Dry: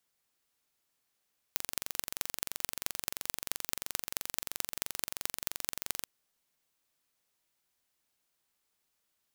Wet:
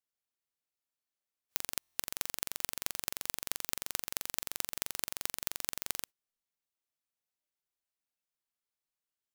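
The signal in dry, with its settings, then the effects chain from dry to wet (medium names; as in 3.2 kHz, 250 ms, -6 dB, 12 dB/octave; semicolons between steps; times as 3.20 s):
pulse train 23 per s, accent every 5, -2.5 dBFS 4.51 s
spectral noise reduction 14 dB; buffer glitch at 1.78 s, samples 1024, times 7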